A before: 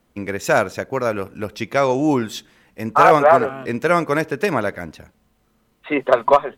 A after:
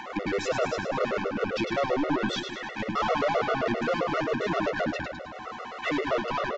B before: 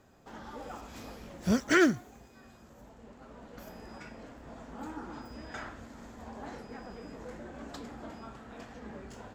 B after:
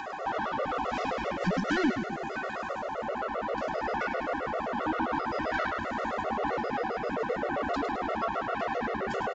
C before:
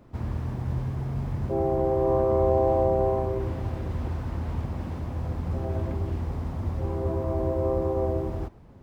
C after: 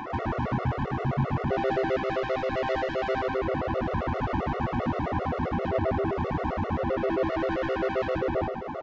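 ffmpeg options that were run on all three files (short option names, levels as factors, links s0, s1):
-filter_complex "[0:a]highshelf=f=3100:g=-11,asplit=2[s0][s1];[s1]acompressor=threshold=0.0355:ratio=6,volume=1.06[s2];[s0][s2]amix=inputs=2:normalize=0,alimiter=limit=0.188:level=0:latency=1:release=37,acrossover=split=480[s3][s4];[s4]acompressor=mode=upward:threshold=0.02:ratio=2.5[s5];[s3][s5]amix=inputs=2:normalize=0,asplit=2[s6][s7];[s7]highpass=f=720:p=1,volume=14.1,asoftclip=type=tanh:threshold=0.251[s8];[s6][s8]amix=inputs=2:normalize=0,lowpass=f=1700:p=1,volume=0.501,asoftclip=type=tanh:threshold=0.0841,aecho=1:1:104|208|312|416|520|624|728|832:0.447|0.268|0.161|0.0965|0.0579|0.0347|0.0208|0.0125,aresample=16000,aresample=44100,afftfilt=real='re*gt(sin(2*PI*7.6*pts/sr)*(1-2*mod(floor(b*sr/1024/370),2)),0)':imag='im*gt(sin(2*PI*7.6*pts/sr)*(1-2*mod(floor(b*sr/1024/370),2)),0)':win_size=1024:overlap=0.75"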